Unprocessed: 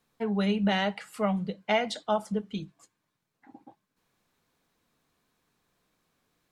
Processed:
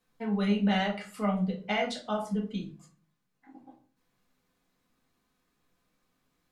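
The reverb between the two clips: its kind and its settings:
rectangular room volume 220 cubic metres, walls furnished, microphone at 2 metres
level −5.5 dB

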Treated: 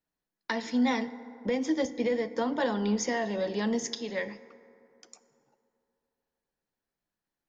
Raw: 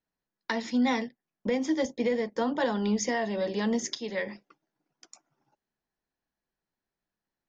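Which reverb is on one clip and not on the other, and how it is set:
feedback delay network reverb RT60 2.9 s, high-frequency decay 0.4×, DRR 14 dB
level −1 dB

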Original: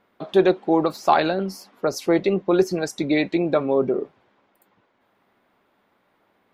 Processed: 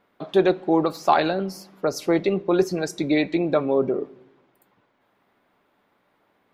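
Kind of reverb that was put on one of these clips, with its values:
rectangular room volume 3,500 cubic metres, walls furnished, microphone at 0.37 metres
level −1 dB

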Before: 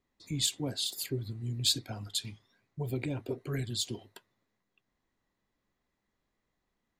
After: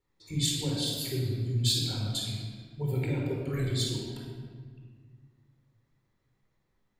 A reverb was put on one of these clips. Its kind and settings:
rectangular room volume 2,200 cubic metres, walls mixed, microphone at 4.3 metres
level −4 dB

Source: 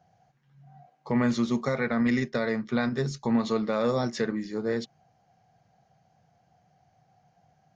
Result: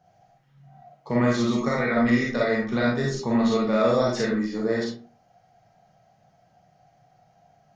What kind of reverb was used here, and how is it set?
comb and all-pass reverb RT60 0.42 s, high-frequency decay 0.55×, pre-delay 5 ms, DRR −4 dB

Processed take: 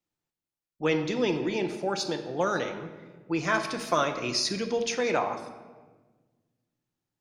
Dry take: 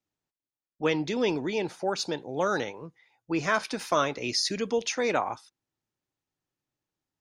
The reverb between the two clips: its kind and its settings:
rectangular room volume 1,100 cubic metres, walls mixed, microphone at 0.83 metres
level −1 dB

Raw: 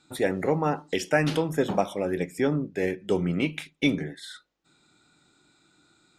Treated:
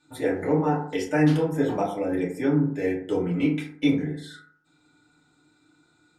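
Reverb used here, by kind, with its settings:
feedback delay network reverb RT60 0.59 s, low-frequency decay 1.05×, high-frequency decay 0.35×, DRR −5 dB
level −7.5 dB

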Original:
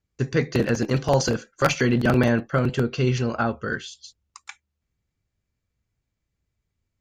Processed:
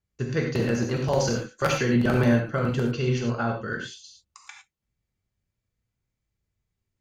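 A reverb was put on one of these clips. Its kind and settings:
reverb whose tail is shaped and stops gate 130 ms flat, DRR 1 dB
level −5.5 dB

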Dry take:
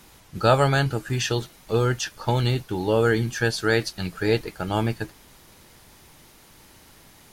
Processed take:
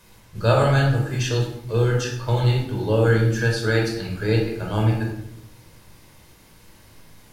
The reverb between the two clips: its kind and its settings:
rectangular room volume 2,000 cubic metres, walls furnished, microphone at 5.2 metres
level −5.5 dB

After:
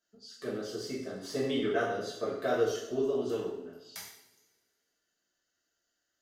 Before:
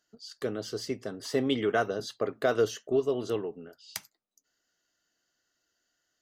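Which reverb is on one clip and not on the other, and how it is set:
coupled-rooms reverb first 0.69 s, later 1.9 s, from −19 dB, DRR −8 dB
level −11.5 dB

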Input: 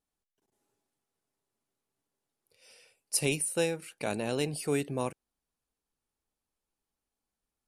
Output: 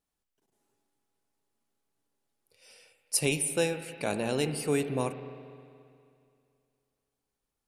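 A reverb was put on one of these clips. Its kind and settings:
spring reverb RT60 2.4 s, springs 31/53 ms, chirp 60 ms, DRR 9 dB
level +1.5 dB

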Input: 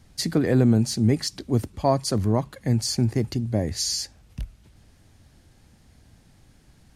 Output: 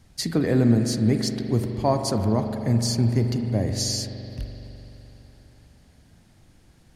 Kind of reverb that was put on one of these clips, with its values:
spring reverb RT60 3.7 s, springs 42 ms, chirp 35 ms, DRR 5 dB
level −1 dB

